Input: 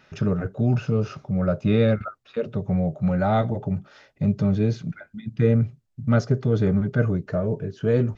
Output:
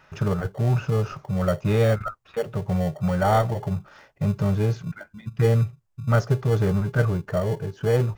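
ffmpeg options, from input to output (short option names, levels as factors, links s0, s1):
-filter_complex "[0:a]equalizer=f=250:t=o:w=0.67:g=-12,equalizer=f=1000:t=o:w=0.67:g=8,equalizer=f=4000:t=o:w=0.67:g=-5,asplit=2[s0][s1];[s1]acrusher=samples=35:mix=1:aa=0.000001,volume=0.282[s2];[s0][s2]amix=inputs=2:normalize=0"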